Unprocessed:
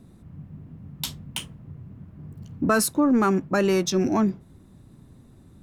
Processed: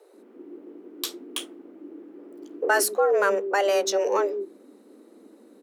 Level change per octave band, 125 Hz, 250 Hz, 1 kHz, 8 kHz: under -25 dB, -14.5 dB, +1.5 dB, 0.0 dB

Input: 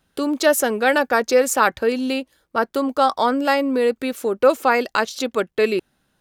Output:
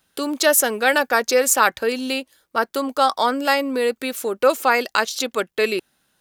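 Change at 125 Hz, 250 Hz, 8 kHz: no reading, -4.0 dB, +6.0 dB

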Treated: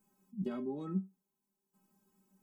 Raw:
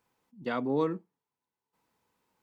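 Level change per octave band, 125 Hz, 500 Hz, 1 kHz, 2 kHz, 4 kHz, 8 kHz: -0.5 dB, -11.0 dB, -15.0 dB, under -15 dB, under -10 dB, no reading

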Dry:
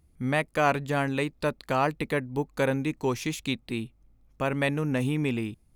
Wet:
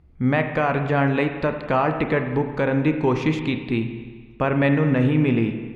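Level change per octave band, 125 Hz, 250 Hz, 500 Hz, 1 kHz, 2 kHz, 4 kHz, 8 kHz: +8.5 dB, +8.5 dB, +6.0 dB, +4.5 dB, +4.5 dB, +0.5 dB, under -10 dB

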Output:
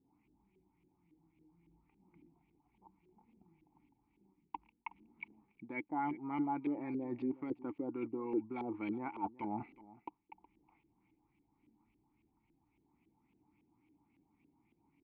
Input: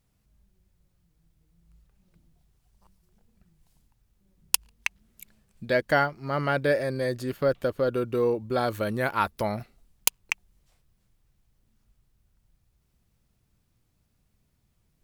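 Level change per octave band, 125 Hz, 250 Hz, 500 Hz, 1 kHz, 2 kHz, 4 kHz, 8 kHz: -19.5 dB, -5.0 dB, -19.0 dB, -11.0 dB, -20.5 dB, under -30 dB, under -40 dB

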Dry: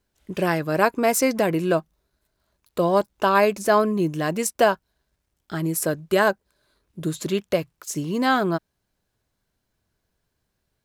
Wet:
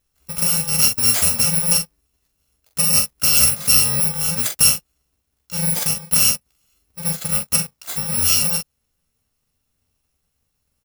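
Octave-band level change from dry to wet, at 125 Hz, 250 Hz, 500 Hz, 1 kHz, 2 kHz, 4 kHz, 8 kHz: +2.5 dB, -7.0 dB, -15.5 dB, -11.5 dB, -2.5 dB, +14.0 dB, +16.0 dB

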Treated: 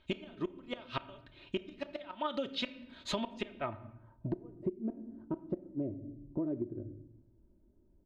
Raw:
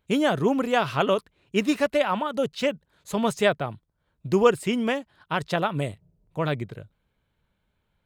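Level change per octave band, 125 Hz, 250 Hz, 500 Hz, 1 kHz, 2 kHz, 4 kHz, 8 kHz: -13.0 dB, -12.0 dB, -17.0 dB, -16.5 dB, -18.0 dB, -10.0 dB, -16.0 dB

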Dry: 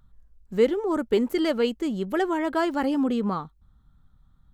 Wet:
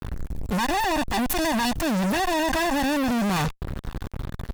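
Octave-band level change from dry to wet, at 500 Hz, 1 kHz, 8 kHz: -4.0 dB, +6.5 dB, no reading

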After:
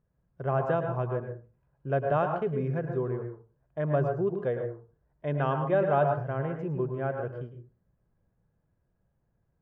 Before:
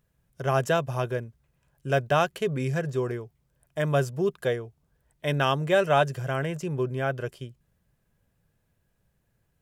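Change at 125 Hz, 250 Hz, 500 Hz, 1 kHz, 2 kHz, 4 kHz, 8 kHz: -2.0 dB, -2.0 dB, -2.0 dB, -2.5 dB, -8.5 dB, under -15 dB, under -30 dB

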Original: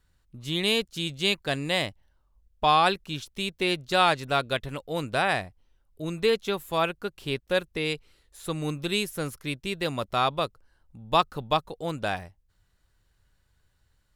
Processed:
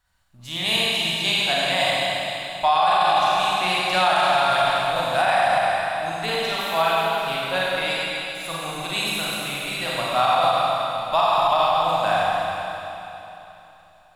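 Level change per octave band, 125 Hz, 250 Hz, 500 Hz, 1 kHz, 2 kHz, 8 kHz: -1.5 dB, -2.5 dB, +5.0 dB, +9.0 dB, +7.0 dB, +7.5 dB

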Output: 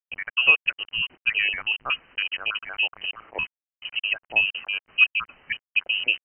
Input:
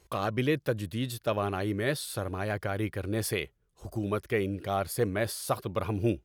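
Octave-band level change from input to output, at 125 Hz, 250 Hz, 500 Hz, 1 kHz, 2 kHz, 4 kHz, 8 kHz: under -20 dB, -21.0 dB, -14.0 dB, -3.0 dB, +16.0 dB, +15.5 dB, under -40 dB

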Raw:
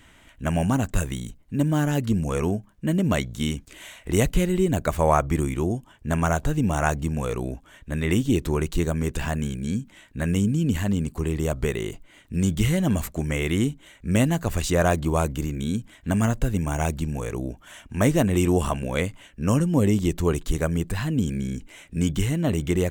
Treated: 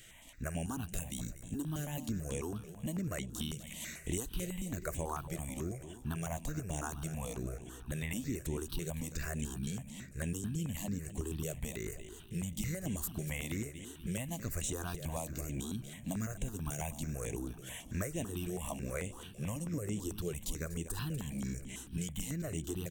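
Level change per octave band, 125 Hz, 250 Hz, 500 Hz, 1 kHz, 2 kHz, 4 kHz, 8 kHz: -15.0 dB, -16.0 dB, -17.0 dB, -17.5 dB, -14.5 dB, -11.5 dB, -6.5 dB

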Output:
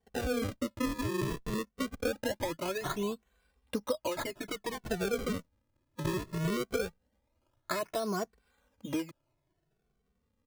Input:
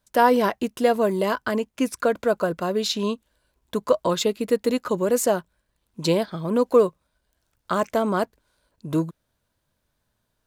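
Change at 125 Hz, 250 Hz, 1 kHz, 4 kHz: -6.0 dB, -10.0 dB, -14.5 dB, -10.0 dB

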